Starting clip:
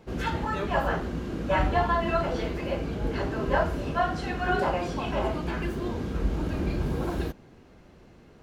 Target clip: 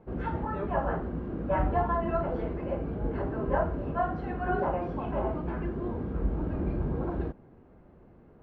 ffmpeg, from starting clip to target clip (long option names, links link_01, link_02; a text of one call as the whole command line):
ffmpeg -i in.wav -af "lowpass=1200,volume=-2dB" out.wav